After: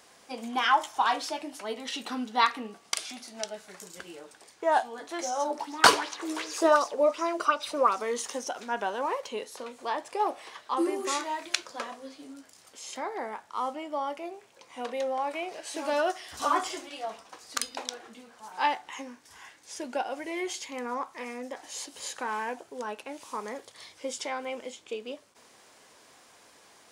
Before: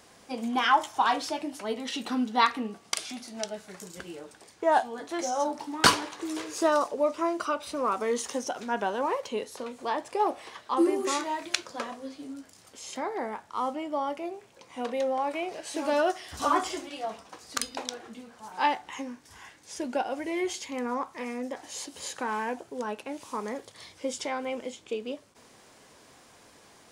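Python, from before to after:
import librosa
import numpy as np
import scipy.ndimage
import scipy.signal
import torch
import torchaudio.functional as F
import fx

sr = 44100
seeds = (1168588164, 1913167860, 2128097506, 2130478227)

y = fx.low_shelf(x, sr, hz=280.0, db=-11.0)
y = fx.bell_lfo(y, sr, hz=2.7, low_hz=380.0, high_hz=6000.0, db=12, at=(5.49, 8.0), fade=0.02)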